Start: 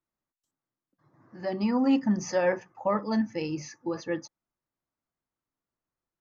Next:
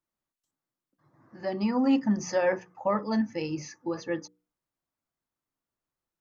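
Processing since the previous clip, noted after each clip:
mains-hum notches 60/120/180/240/300/360/420/480 Hz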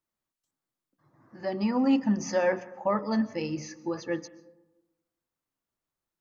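comb and all-pass reverb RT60 1.1 s, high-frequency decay 0.35×, pre-delay 90 ms, DRR 18 dB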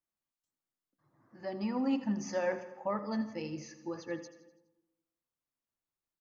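repeating echo 83 ms, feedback 53%, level −14 dB
level −7.5 dB

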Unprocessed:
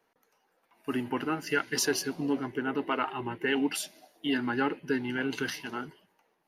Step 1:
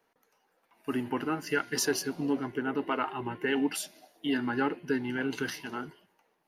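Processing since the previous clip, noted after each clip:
hum removal 353.9 Hz, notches 14
dynamic equaliser 3,000 Hz, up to −3 dB, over −42 dBFS, Q 0.81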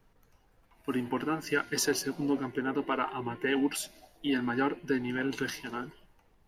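background noise brown −63 dBFS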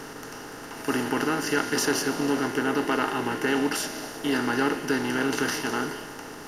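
compressor on every frequency bin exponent 0.4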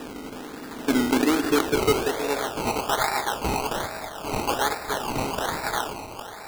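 high-pass filter sweep 220 Hz → 710 Hz, 0:00.99–0:02.66
sample-and-hold swept by an LFO 20×, swing 60% 1.2 Hz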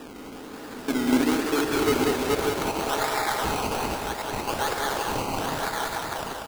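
delay that plays each chunk backwards 528 ms, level −2 dB
on a send: loudspeakers that aren't time-aligned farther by 46 metres −10 dB, 65 metres −4 dB
on the sum: level −4.5 dB

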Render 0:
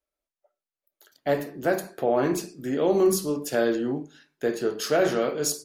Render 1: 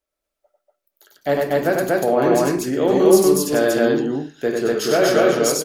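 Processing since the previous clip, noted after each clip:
loudspeakers that aren't time-aligned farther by 33 metres −3 dB, 82 metres 0 dB
level +4 dB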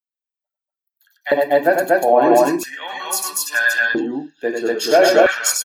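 spectral dynamics exaggerated over time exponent 1.5
comb filter 1.2 ms, depth 70%
auto-filter high-pass square 0.38 Hz 370–1,500 Hz
level +4 dB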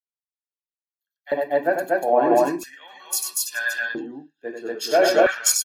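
multiband upward and downward expander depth 70%
level −6 dB

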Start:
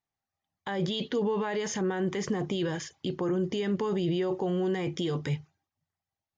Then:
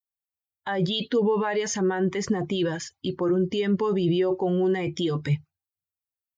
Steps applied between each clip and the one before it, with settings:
spectral dynamics exaggerated over time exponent 1.5
level +7.5 dB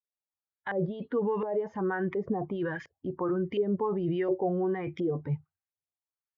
auto-filter low-pass saw up 1.4 Hz 480–2,200 Hz
level −7 dB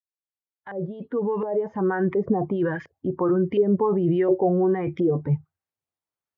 fade in at the beginning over 2.10 s
high-pass filter 63 Hz
high-shelf EQ 2,100 Hz −12 dB
level +8.5 dB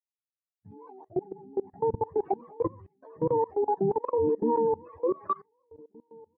frequency axis turned over on the octave scale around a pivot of 410 Hz
slap from a distant wall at 260 metres, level −26 dB
output level in coarse steps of 24 dB

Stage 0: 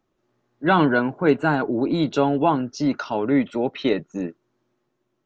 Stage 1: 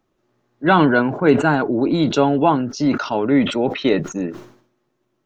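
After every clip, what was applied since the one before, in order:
level that may fall only so fast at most 100 dB per second
level +3.5 dB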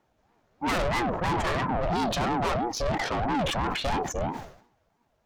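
tube saturation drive 25 dB, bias 0.35
ring modulator whose carrier an LFO sweeps 430 Hz, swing 40%, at 3 Hz
level +3.5 dB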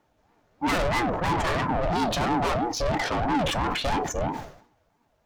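in parallel at −10.5 dB: hard clipping −28.5 dBFS, distortion −10 dB
on the sum: feedback delay network reverb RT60 0.3 s, low-frequency decay 0.95×, high-frequency decay 0.65×, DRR 12.5 dB

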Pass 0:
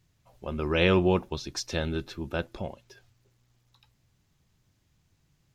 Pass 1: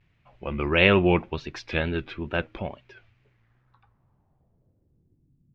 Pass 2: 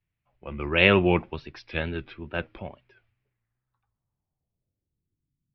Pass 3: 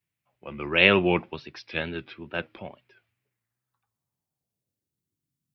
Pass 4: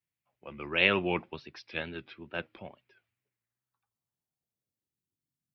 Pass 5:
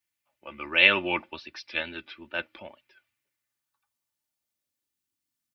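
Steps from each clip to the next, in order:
tape wow and flutter 110 cents; low-pass filter sweep 2,400 Hz → 220 Hz, 0:03.24–0:05.53; level +2.5 dB
elliptic low-pass filter 5,400 Hz; multiband upward and downward expander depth 40%; level −2.5 dB
high-pass filter 130 Hz 12 dB per octave; high-shelf EQ 3,800 Hz +8 dB; level −1 dB
harmonic and percussive parts rebalanced percussive +4 dB; level −9 dB
tilt shelving filter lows −5 dB, about 750 Hz; comb filter 3.4 ms, depth 56%; level +1.5 dB

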